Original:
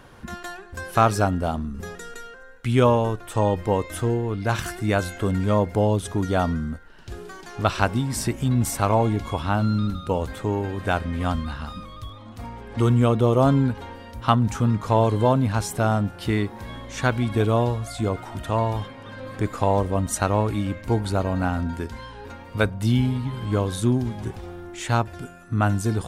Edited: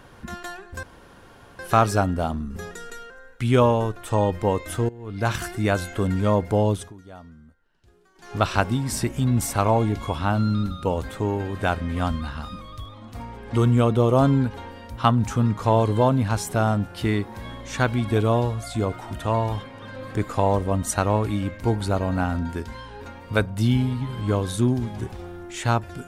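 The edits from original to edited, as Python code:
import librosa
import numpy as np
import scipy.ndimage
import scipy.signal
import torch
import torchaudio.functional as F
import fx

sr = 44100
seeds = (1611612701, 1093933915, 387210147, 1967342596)

y = fx.edit(x, sr, fx.insert_room_tone(at_s=0.83, length_s=0.76),
    fx.fade_in_from(start_s=4.13, length_s=0.32, curve='qua', floor_db=-19.0),
    fx.fade_down_up(start_s=5.98, length_s=1.6, db=-21.0, fade_s=0.19), tone=tone)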